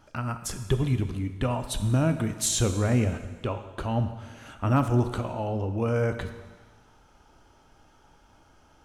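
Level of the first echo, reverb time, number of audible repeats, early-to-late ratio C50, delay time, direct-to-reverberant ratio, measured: no echo, 1.4 s, no echo, 10.0 dB, no echo, 8.5 dB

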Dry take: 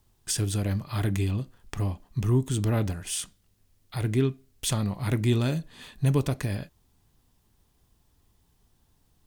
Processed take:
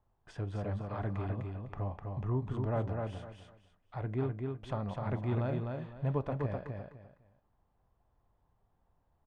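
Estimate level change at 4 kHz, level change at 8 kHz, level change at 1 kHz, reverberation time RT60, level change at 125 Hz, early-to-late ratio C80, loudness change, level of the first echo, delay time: -22.0 dB, under -35 dB, -1.5 dB, no reverb, -8.5 dB, no reverb, -8.5 dB, -4.0 dB, 253 ms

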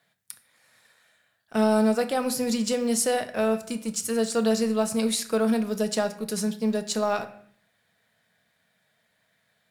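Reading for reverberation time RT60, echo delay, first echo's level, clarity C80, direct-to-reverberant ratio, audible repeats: 0.60 s, no echo, no echo, 16.5 dB, 8.0 dB, no echo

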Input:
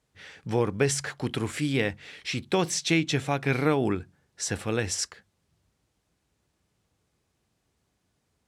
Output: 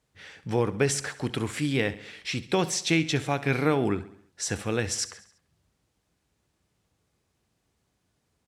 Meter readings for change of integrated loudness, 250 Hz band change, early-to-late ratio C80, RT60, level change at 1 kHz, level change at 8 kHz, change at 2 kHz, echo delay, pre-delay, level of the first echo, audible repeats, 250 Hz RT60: 0.0 dB, 0.0 dB, no reverb, no reverb, 0.0 dB, 0.0 dB, 0.0 dB, 68 ms, no reverb, -16.5 dB, 4, no reverb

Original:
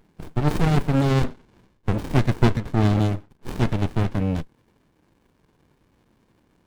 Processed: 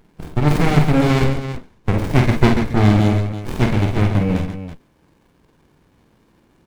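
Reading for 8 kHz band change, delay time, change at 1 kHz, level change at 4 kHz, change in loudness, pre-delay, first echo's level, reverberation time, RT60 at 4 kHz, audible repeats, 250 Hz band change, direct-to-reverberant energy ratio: no reading, 48 ms, +6.0 dB, +6.5 dB, +5.5 dB, no reverb, -5.5 dB, no reverb, no reverb, 3, +6.0 dB, no reverb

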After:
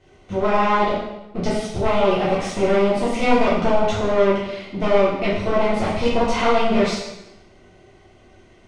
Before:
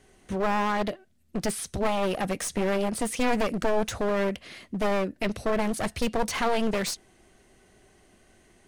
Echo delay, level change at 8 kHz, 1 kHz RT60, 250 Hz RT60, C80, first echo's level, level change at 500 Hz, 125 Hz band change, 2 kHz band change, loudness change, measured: no echo, -3.5 dB, 0.90 s, 0.95 s, 4.0 dB, no echo, +9.5 dB, +7.5 dB, +6.0 dB, +8.0 dB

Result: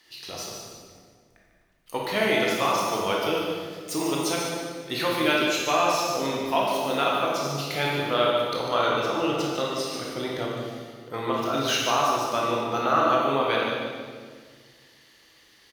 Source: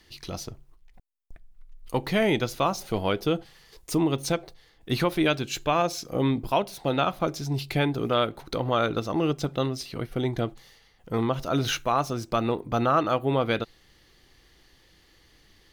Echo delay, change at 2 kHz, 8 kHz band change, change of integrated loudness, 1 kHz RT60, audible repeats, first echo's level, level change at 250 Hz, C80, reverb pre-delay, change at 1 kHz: 148 ms, +5.0 dB, +5.0 dB, +1.5 dB, 1.6 s, 1, -8.0 dB, -2.0 dB, 1.0 dB, 16 ms, +3.5 dB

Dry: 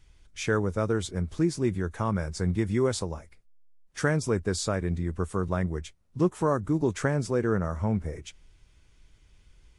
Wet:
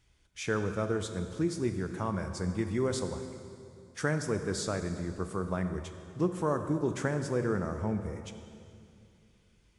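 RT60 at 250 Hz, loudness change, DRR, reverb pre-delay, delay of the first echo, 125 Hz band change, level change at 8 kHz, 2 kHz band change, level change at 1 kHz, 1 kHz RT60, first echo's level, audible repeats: 3.0 s, -4.5 dB, 7.5 dB, 24 ms, no echo, -5.5 dB, -4.0 dB, -4.0 dB, -4.0 dB, 2.4 s, no echo, no echo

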